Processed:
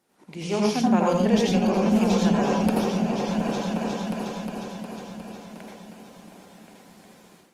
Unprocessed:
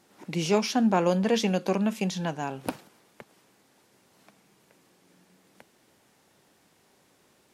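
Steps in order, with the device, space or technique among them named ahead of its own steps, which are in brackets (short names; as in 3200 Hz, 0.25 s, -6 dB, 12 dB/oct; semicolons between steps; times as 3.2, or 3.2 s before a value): 0.65–1.26 high shelf 5600 Hz +4.5 dB; repeats that get brighter 0.359 s, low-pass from 200 Hz, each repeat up 2 oct, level -3 dB; swung echo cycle 1.104 s, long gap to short 3:1, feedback 38%, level -23 dB; far-field microphone of a smart speaker (reverb RT60 0.30 s, pre-delay 77 ms, DRR -1 dB; HPF 120 Hz 6 dB/oct; AGC gain up to 12.5 dB; gain -7 dB; Opus 24 kbps 48000 Hz)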